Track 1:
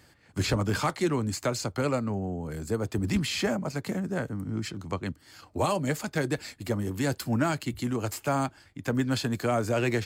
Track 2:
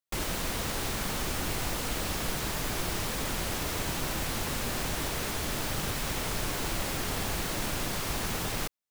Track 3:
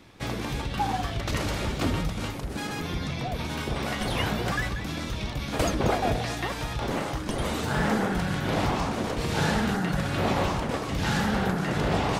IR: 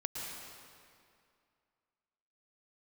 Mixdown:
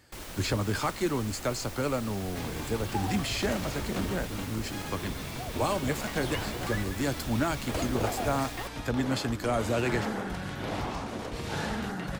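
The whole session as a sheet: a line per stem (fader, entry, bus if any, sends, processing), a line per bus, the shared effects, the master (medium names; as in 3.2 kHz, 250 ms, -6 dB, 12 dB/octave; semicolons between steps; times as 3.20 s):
-2.0 dB, 0.00 s, no send, none
-9.5 dB, 0.00 s, no send, none
-7.0 dB, 2.15 s, no send, none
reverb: none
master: peaking EQ 160 Hz -4.5 dB 0.35 oct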